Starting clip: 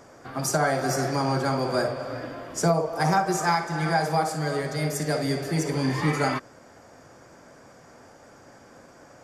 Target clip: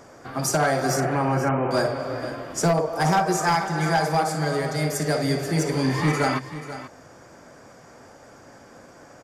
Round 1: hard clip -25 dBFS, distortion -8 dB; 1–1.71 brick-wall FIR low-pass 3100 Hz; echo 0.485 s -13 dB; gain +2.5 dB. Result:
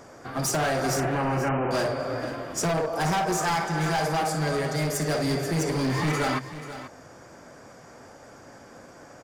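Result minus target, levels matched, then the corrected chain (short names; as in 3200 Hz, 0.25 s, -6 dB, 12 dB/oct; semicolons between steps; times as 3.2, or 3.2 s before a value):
hard clip: distortion +11 dB
hard clip -17 dBFS, distortion -19 dB; 1–1.71 brick-wall FIR low-pass 3100 Hz; echo 0.485 s -13 dB; gain +2.5 dB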